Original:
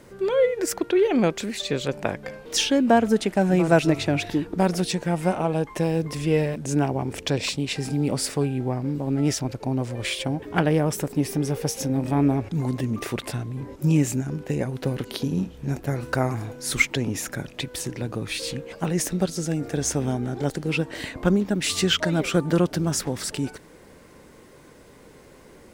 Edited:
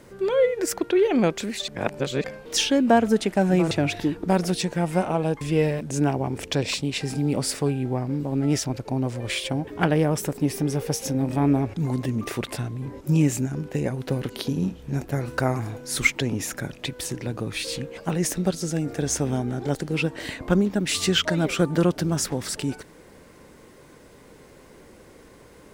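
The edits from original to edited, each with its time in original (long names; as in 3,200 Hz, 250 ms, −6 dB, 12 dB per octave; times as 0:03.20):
0:01.68–0:02.24: reverse
0:03.71–0:04.01: remove
0:05.71–0:06.16: remove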